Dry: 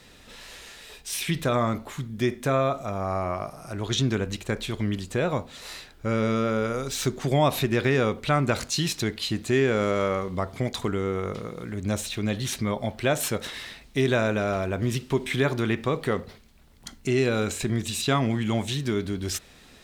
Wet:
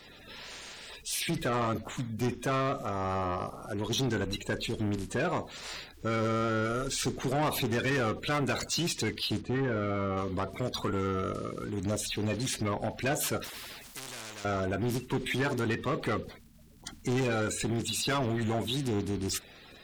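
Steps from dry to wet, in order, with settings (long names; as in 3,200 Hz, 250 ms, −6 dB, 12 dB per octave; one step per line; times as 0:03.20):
spectral magnitudes quantised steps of 30 dB
soft clipping −25 dBFS, distortion −9 dB
0:09.41–0:10.17: head-to-tape spacing loss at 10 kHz 29 dB
0:13.44–0:14.45: every bin compressed towards the loudest bin 4 to 1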